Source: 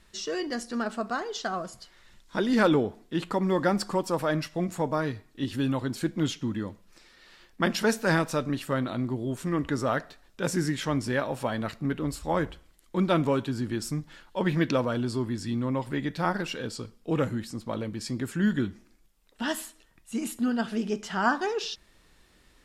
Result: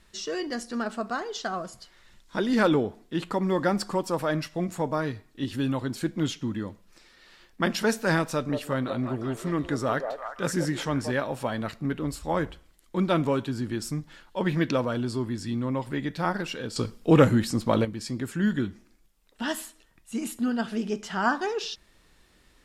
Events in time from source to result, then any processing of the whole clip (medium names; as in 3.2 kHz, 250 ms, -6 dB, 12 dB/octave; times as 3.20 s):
8.32–11.12 s: repeats whose band climbs or falls 178 ms, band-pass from 600 Hz, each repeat 0.7 oct, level -3 dB
16.76–17.85 s: gain +9.5 dB